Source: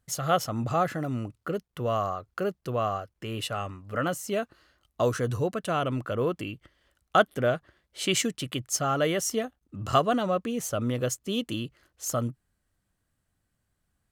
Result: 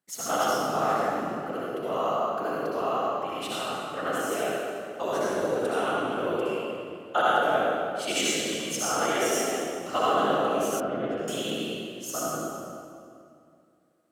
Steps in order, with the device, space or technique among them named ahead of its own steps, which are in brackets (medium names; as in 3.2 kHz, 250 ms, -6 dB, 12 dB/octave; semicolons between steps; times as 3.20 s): whispering ghost (whisper effect; high-pass 310 Hz 12 dB/octave; reverberation RT60 2.4 s, pre-delay 58 ms, DRR -7.5 dB); 10.80–11.28 s: distance through air 420 m; trim -5.5 dB